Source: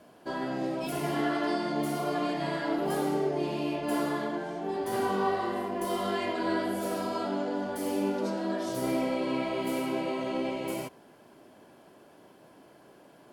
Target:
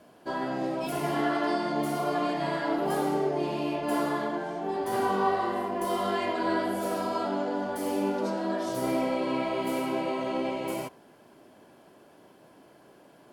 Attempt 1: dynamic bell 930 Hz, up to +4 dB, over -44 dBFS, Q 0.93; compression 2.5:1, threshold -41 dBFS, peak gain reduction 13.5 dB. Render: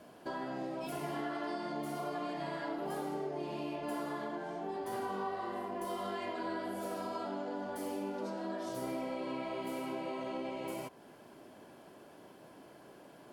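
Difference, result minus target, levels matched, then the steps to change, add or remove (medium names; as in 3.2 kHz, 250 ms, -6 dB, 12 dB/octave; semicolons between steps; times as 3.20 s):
compression: peak gain reduction +13.5 dB
remove: compression 2.5:1, threshold -41 dBFS, peak gain reduction 13.5 dB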